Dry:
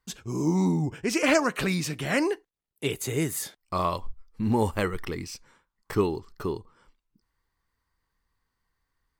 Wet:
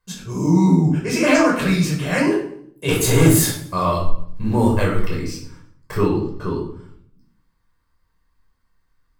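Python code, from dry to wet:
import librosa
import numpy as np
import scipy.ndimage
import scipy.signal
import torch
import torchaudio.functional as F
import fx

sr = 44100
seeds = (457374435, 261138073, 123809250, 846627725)

p1 = fx.leveller(x, sr, passes=3, at=(2.88, 3.59))
p2 = fx.air_absorb(p1, sr, metres=58.0, at=(5.98, 6.58))
p3 = p2 + fx.echo_feedback(p2, sr, ms=114, feedback_pct=33, wet_db=-19.5, dry=0)
p4 = fx.room_shoebox(p3, sr, seeds[0], volume_m3=760.0, walls='furnished', distance_m=5.3)
y = p4 * librosa.db_to_amplitude(-1.0)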